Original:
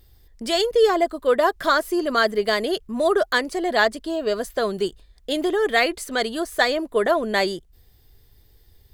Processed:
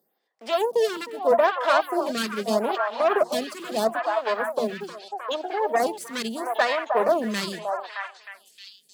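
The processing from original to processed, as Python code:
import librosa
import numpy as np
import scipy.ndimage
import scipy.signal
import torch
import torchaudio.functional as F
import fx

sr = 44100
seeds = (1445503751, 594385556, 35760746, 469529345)

p1 = fx.envelope_sharpen(x, sr, power=3.0, at=(4.67, 5.8))
p2 = fx.hum_notches(p1, sr, base_hz=60, count=6)
p3 = fx.cheby_harmonics(p2, sr, harmonics=(8,), levels_db=(-15,), full_scale_db=-5.5)
p4 = fx.quant_dither(p3, sr, seeds[0], bits=6, dither='none')
p5 = p3 + F.gain(torch.from_numpy(p4), -7.0).numpy()
p6 = scipy.signal.sosfilt(scipy.signal.cheby1(6, 6, 160.0, 'highpass', fs=sr, output='sos'), p5)
p7 = p6 + fx.echo_stepped(p6, sr, ms=310, hz=850.0, octaves=0.7, feedback_pct=70, wet_db=-1.5, dry=0)
p8 = fx.stagger_phaser(p7, sr, hz=0.78)
y = F.gain(torch.from_numpy(p8), -2.5).numpy()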